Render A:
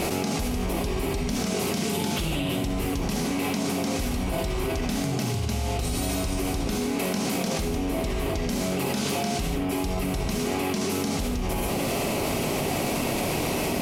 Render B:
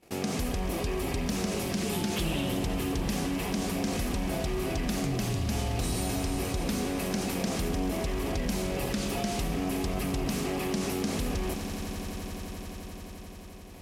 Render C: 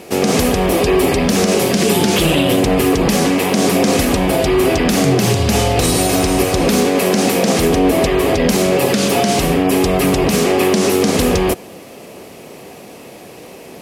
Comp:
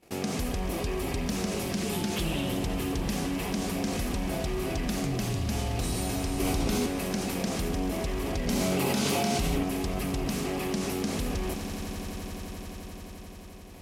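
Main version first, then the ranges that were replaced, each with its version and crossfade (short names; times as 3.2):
B
6.4–6.86 from A
8.47–9.63 from A
not used: C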